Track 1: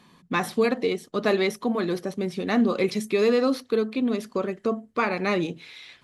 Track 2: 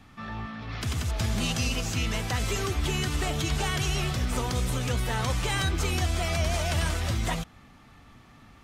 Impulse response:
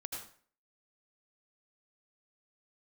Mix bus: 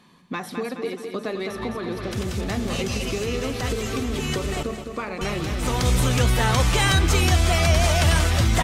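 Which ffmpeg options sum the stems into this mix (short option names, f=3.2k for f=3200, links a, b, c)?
-filter_complex "[0:a]acompressor=threshold=-28dB:ratio=4,volume=-6.5dB,asplit=3[a][b][c];[b]volume=-6dB[d];[1:a]adelay=1300,volume=1.5dB,asplit=3[e][f][g];[e]atrim=end=4.63,asetpts=PTS-STARTPTS,afade=t=out:st=4.626:d=0.004:c=hsin[h];[f]atrim=start=4.63:end=5.21,asetpts=PTS-STARTPTS,volume=0[i];[g]atrim=start=5.21,asetpts=PTS-STARTPTS,afade=t=in:d=0.004:c=hsin[j];[h][i][j]concat=n=3:v=0:a=1,asplit=2[k][l];[l]volume=-19dB[m];[c]apad=whole_len=438107[n];[k][n]sidechaincompress=threshold=-44dB:ratio=8:attack=28:release=544[o];[d][m]amix=inputs=2:normalize=0,aecho=0:1:210|420|630|840|1050|1260|1470|1680:1|0.52|0.27|0.141|0.0731|0.038|0.0198|0.0103[p];[a][o][p]amix=inputs=3:normalize=0,acontrast=80"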